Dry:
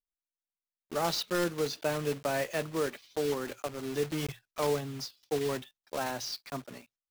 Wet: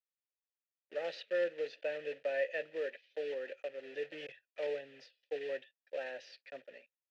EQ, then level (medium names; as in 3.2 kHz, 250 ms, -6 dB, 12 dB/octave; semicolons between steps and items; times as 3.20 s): vowel filter e; low-pass 3.6 kHz 12 dB/octave; tilt EQ +2.5 dB/octave; +4.5 dB